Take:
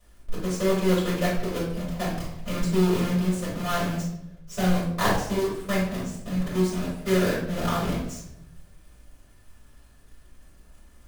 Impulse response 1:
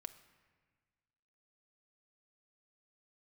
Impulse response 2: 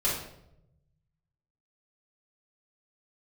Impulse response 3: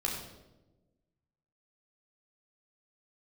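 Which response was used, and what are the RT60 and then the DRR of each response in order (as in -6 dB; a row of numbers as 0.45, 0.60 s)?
2; 1.5, 0.80, 1.1 s; 9.5, -8.5, -2.5 dB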